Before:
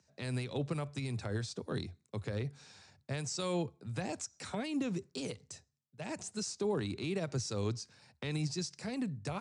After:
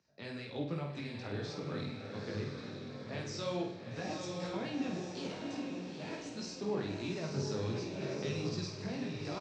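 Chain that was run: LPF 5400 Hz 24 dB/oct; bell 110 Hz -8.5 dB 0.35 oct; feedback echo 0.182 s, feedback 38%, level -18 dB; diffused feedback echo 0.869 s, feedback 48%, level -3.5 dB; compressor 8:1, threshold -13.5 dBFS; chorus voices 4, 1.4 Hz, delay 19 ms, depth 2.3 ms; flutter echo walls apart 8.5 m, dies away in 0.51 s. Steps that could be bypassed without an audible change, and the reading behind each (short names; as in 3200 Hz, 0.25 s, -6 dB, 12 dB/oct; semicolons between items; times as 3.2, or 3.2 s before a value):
compressor, threshold -13.5 dBFS: input peak -23.0 dBFS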